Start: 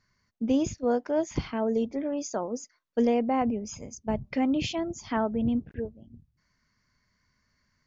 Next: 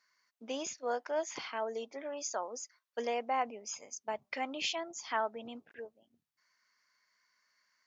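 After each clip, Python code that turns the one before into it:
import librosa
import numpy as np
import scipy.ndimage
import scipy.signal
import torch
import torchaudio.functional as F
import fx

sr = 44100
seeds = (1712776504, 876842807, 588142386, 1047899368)

y = scipy.signal.sosfilt(scipy.signal.butter(2, 820.0, 'highpass', fs=sr, output='sos'), x)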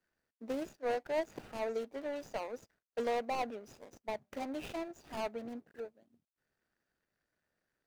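y = scipy.ndimage.median_filter(x, 41, mode='constant')
y = F.gain(torch.from_numpy(y), 3.5).numpy()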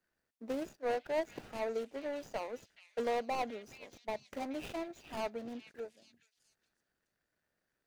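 y = fx.echo_stepped(x, sr, ms=424, hz=2900.0, octaves=0.7, feedback_pct=70, wet_db=-9)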